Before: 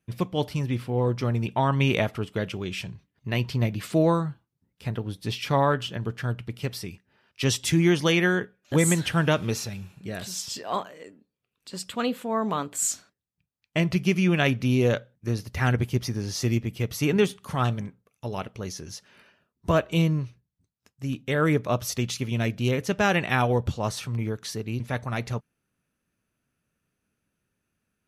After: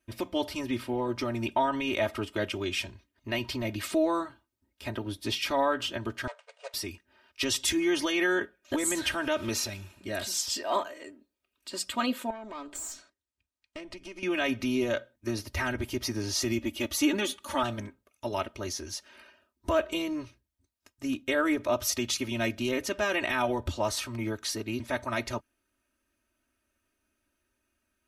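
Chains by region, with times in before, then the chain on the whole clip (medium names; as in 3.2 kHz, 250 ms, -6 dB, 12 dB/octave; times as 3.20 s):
6.27–6.74 s: median filter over 41 samples + brick-wall FIR band-pass 440–9600 Hz
12.30–14.23 s: steep low-pass 10 kHz + compression 8:1, threshold -34 dBFS + valve stage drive 33 dB, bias 0.6
16.58–17.63 s: bass shelf 140 Hz -6 dB + comb 3.5 ms, depth 69%
whole clip: peak limiter -18.5 dBFS; peaking EQ 150 Hz -14 dB 0.84 oct; comb 3.2 ms, depth 92%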